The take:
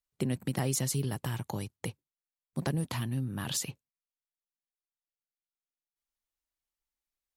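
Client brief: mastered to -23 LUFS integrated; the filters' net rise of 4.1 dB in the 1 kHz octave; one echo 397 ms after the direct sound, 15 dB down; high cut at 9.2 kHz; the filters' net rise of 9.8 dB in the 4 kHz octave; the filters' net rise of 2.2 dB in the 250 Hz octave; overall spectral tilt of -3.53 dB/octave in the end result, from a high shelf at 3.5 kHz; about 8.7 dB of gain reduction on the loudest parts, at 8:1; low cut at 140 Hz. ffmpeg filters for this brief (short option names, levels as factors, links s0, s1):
-af "highpass=140,lowpass=9200,equalizer=f=250:t=o:g=3.5,equalizer=f=1000:t=o:g=4,highshelf=f=3500:g=8.5,equalizer=f=4000:t=o:g=6.5,acompressor=threshold=0.0316:ratio=8,aecho=1:1:397:0.178,volume=4.22"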